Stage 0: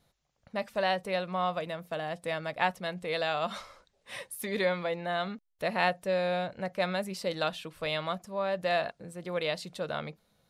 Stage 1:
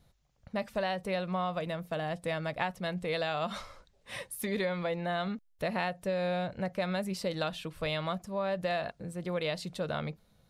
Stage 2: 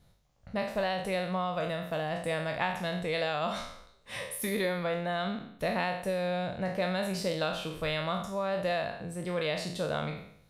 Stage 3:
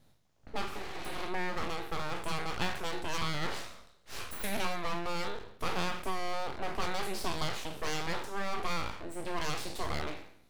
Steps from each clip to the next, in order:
low-shelf EQ 160 Hz +11.5 dB; downward compressor, threshold −28 dBFS, peak gain reduction 8 dB
peak hold with a decay on every bin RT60 0.66 s
healed spectral selection 0:00.75–0:01.20, 310–7,700 Hz both; full-wave rectification

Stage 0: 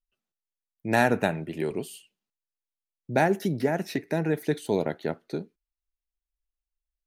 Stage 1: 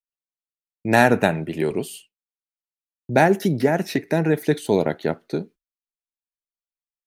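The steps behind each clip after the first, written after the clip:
downward expander −45 dBFS
level +6.5 dB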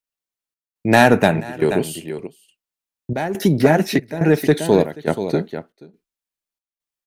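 single-tap delay 481 ms −11 dB
soft clipping −6.5 dBFS, distortion −18 dB
gate pattern "xxxxx..x" 139 BPM −12 dB
level +5.5 dB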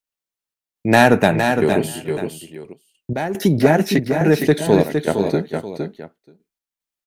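single-tap delay 461 ms −6.5 dB

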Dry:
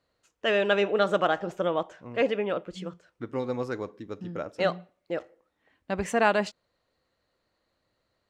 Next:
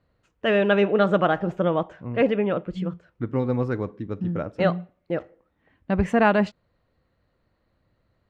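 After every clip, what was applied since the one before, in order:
bass and treble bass +11 dB, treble −14 dB
level +3 dB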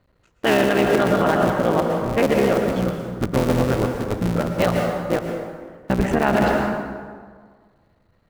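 sub-harmonics by changed cycles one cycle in 3, muted
convolution reverb RT60 1.7 s, pre-delay 103 ms, DRR 4 dB
brickwall limiter −14.5 dBFS, peak gain reduction 8.5 dB
level +6.5 dB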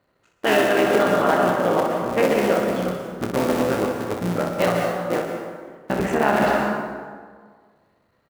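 high-pass filter 310 Hz 6 dB per octave
parametric band 3,800 Hz −2 dB 1.6 octaves
on a send: ambience of single reflections 28 ms −7 dB, 62 ms −6 dB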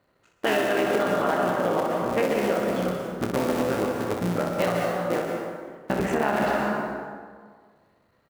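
downward compressor 2.5 to 1, threshold −22 dBFS, peak gain reduction 6.5 dB

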